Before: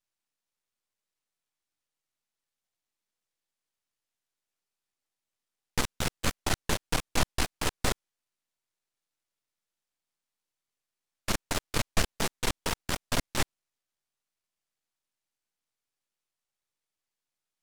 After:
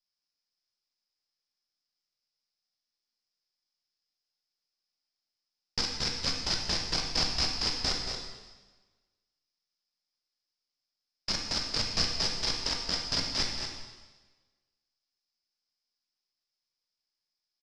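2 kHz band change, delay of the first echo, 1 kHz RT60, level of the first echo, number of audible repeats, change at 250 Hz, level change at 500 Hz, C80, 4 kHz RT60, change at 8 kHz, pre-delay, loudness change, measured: -3.5 dB, 228 ms, 1.3 s, -7.0 dB, 1, -5.0 dB, -5.5 dB, 3.0 dB, 1.2 s, -2.5 dB, 7 ms, +2.0 dB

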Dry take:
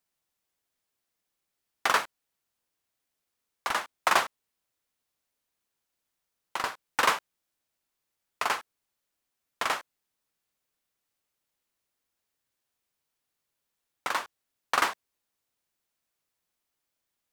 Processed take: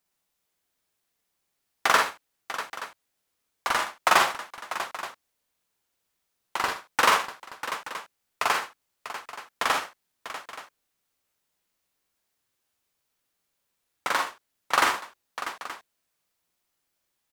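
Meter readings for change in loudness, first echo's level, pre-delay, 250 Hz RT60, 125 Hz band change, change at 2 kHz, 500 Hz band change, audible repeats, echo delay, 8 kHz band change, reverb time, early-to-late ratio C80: +2.5 dB, -5.0 dB, no reverb, no reverb, +5.0 dB, +4.5 dB, +4.5 dB, 5, 44 ms, +4.5 dB, no reverb, no reverb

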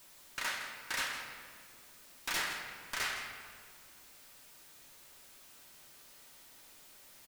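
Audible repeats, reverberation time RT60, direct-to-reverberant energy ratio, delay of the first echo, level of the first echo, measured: 1, 2.0 s, 1.0 dB, 162 ms, -11.0 dB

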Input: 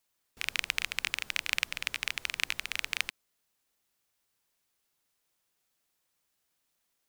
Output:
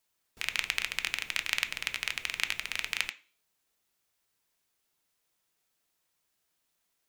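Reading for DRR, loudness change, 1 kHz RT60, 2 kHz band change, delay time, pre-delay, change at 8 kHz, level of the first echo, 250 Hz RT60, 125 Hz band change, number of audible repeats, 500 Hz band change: 8.5 dB, +0.5 dB, 0.40 s, +0.5 dB, no echo, 3 ms, 0.0 dB, no echo, 0.55 s, 0.0 dB, no echo, +0.5 dB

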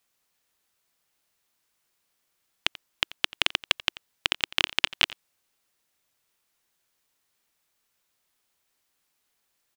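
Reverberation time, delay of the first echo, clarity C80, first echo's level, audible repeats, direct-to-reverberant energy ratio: no reverb, 87 ms, no reverb, -19.5 dB, 1, no reverb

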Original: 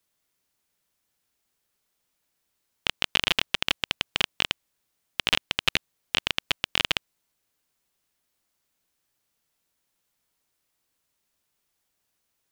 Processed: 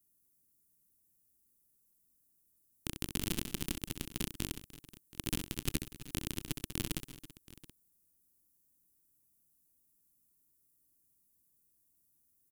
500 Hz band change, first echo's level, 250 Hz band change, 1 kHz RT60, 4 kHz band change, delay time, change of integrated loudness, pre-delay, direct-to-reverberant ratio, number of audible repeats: -8.5 dB, -7.5 dB, +2.0 dB, no reverb, -18.5 dB, 65 ms, -13.0 dB, no reverb, no reverb, 4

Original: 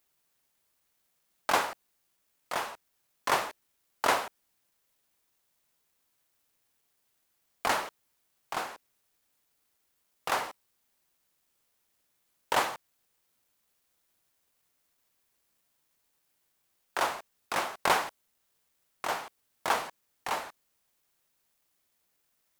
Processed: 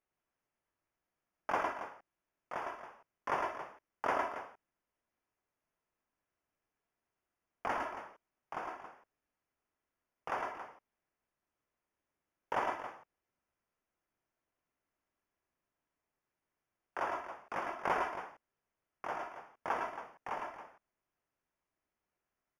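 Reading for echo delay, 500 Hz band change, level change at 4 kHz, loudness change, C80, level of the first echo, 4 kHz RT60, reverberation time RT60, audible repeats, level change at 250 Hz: 106 ms, -4.5 dB, -18.0 dB, -7.5 dB, no reverb, -3.5 dB, no reverb, no reverb, 2, -4.0 dB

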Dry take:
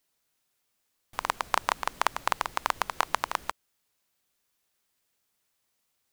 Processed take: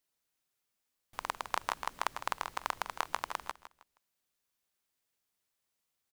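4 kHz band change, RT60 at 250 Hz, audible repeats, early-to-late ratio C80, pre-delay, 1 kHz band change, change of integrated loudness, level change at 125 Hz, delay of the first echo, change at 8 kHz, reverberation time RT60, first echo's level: -7.0 dB, no reverb, 3, no reverb, no reverb, -7.0 dB, -7.0 dB, -7.5 dB, 158 ms, -7.0 dB, no reverb, -12.5 dB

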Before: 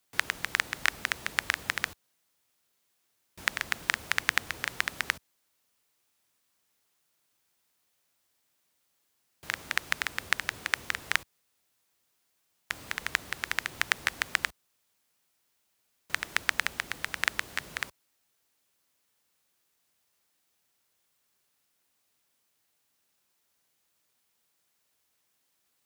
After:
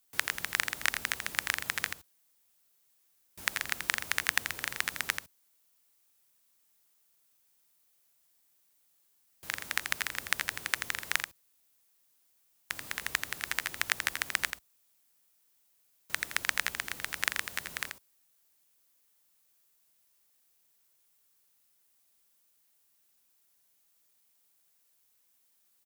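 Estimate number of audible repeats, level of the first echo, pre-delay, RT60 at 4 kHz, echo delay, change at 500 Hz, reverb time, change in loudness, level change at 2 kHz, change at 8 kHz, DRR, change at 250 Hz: 1, -7.0 dB, no reverb, no reverb, 84 ms, -3.0 dB, no reverb, -1.5 dB, -2.5 dB, +2.5 dB, no reverb, -3.0 dB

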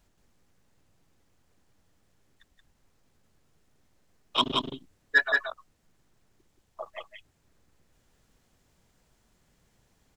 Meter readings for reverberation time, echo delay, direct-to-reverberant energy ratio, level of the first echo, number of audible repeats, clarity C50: no reverb, 177 ms, no reverb, -3.5 dB, 1, no reverb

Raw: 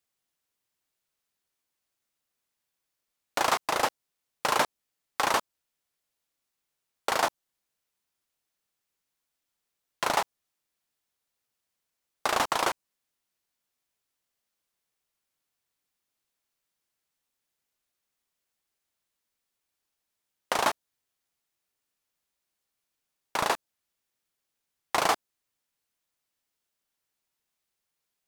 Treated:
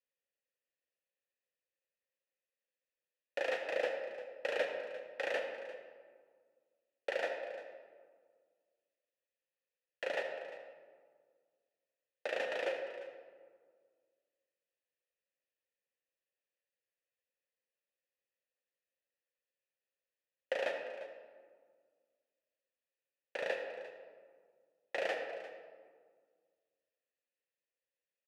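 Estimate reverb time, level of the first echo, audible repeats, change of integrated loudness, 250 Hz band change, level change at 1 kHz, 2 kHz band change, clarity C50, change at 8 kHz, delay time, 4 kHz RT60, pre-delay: 1.7 s, -15.5 dB, 1, -11.0 dB, -14.0 dB, -18.5 dB, -7.5 dB, 4.0 dB, -25.0 dB, 349 ms, 1.0 s, 36 ms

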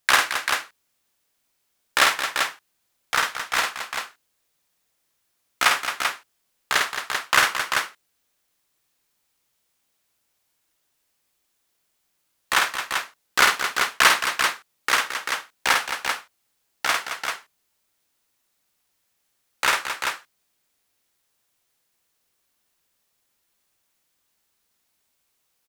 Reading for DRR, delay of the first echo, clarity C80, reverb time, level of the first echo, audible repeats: no reverb, 52 ms, no reverb, no reverb, -4.0 dB, 3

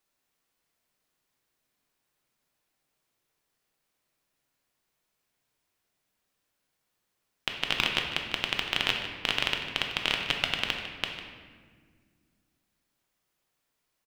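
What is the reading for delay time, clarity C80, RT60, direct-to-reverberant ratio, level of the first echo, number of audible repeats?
151 ms, 5.5 dB, 1.8 s, 1.5 dB, -13.5 dB, 1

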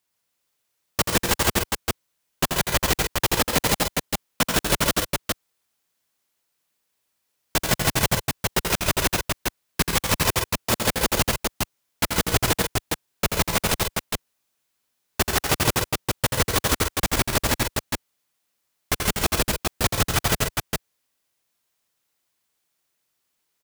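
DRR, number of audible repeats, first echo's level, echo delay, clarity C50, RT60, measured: no reverb, 3, -6.0 dB, 84 ms, no reverb, no reverb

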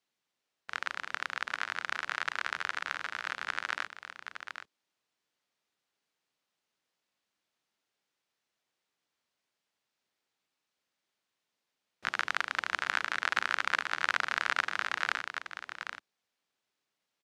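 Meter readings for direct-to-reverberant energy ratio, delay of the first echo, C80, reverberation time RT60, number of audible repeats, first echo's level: no reverb, 778 ms, no reverb, no reverb, 1, -8.5 dB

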